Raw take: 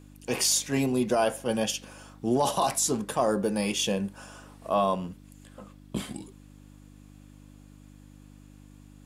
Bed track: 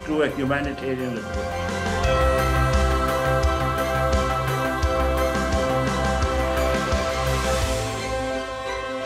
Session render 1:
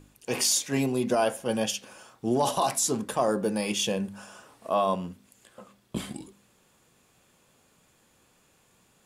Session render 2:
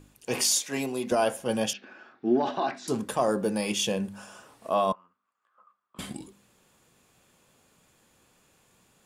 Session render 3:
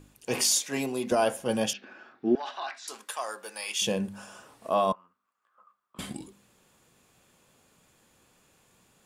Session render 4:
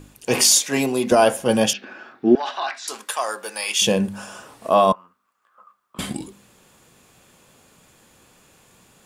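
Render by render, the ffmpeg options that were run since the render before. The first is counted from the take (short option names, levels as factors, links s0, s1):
-af "bandreject=f=50:t=h:w=4,bandreject=f=100:t=h:w=4,bandreject=f=150:t=h:w=4,bandreject=f=200:t=h:w=4,bandreject=f=250:t=h:w=4,bandreject=f=300:t=h:w=4"
-filter_complex "[0:a]asettb=1/sr,asplit=3[s0][s1][s2];[s0]atrim=end=0.584[s3];[s1]atrim=start=0.58:end=1.12,asetpts=PTS-STARTPTS,afade=t=in:d=0.004:c=qsin,afade=t=out:st=0.536:d=0.004:c=qsin,highpass=f=410:p=1[s4];[s2]atrim=start=1.116[s5];[s3][s4]acrossfade=d=0.004:c1=hsin:c2=qsin[s6];[s6][s5]acrossfade=d=0.004:c1=qsin:c2=hsin,asettb=1/sr,asplit=3[s7][s8][s9];[s7]atrim=end=1.734[s10];[s8]atrim=start=1.73:end=2.88,asetpts=PTS-STARTPTS,afade=t=in:d=0.004:c=qsin,afade=t=out:st=1.146:d=0.004:c=qsin,highpass=250,equalizer=f=250:t=q:w=4:g=6,equalizer=f=360:t=q:w=4:g=6,equalizer=f=510:t=q:w=4:g=-8,equalizer=f=1000:t=q:w=4:g=-7,equalizer=f=1600:t=q:w=4:g=7,equalizer=f=3100:t=q:w=4:g=-8,lowpass=f=3600:w=0.5412,lowpass=f=3600:w=1.3066[s11];[s9]atrim=start=2.876[s12];[s10][s11]acrossfade=d=0.004:c1=hsin:c2=qsin[s13];[s13][s12]acrossfade=d=0.004:c1=qsin:c2=hsin,asettb=1/sr,asplit=3[s14][s15][s16];[s14]atrim=end=4.924[s17];[s15]atrim=start=4.92:end=5.99,asetpts=PTS-STARTPTS,afade=t=in:d=0.004:c=qsin,afade=t=out:st=1.066:d=0.004:c=qsin,bandpass=f=1200:t=q:w=8.7[s18];[s16]atrim=start=5.986[s19];[s17][s18]acrossfade=d=0.004:c1=hsin:c2=qsin[s20];[s20][s19]acrossfade=d=0.004:c1=qsin:c2=hsin"
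-filter_complex "[0:a]asettb=1/sr,asplit=3[s0][s1][s2];[s0]atrim=end=2.354[s3];[s1]atrim=start=2.35:end=3.82,asetpts=PTS-STARTPTS,afade=t=in:d=0.004:c=qsin,afade=t=out:st=1.466:d=0.004:c=qsin,highpass=1200[s4];[s2]atrim=start=3.816[s5];[s3][s4]acrossfade=d=0.004:c1=hsin:c2=qsin[s6];[s6][s5]acrossfade=d=0.004:c1=qsin:c2=hsin"
-af "volume=2.99"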